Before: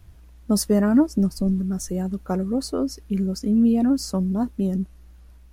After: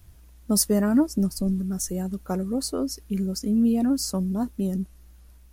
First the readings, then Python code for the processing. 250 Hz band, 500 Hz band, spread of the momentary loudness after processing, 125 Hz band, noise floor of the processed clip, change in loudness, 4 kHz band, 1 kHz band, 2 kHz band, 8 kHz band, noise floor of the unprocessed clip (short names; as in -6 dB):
-3.0 dB, -3.0 dB, 9 LU, -3.0 dB, -51 dBFS, -2.5 dB, +2.0 dB, -2.5 dB, n/a, +4.5 dB, -48 dBFS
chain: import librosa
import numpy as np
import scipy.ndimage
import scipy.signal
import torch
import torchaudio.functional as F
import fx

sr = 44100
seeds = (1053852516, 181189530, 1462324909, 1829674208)

y = fx.high_shelf(x, sr, hz=5600.0, db=11.0)
y = y * 10.0 ** (-3.0 / 20.0)